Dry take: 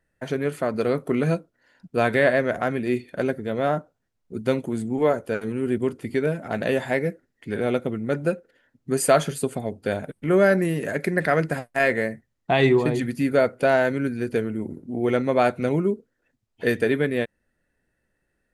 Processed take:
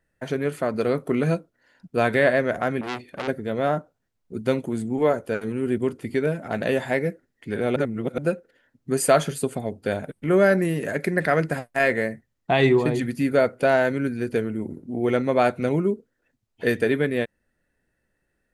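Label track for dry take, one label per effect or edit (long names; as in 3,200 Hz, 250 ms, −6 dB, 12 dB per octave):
2.810000	3.280000	saturating transformer saturates under 2,600 Hz
7.760000	8.180000	reverse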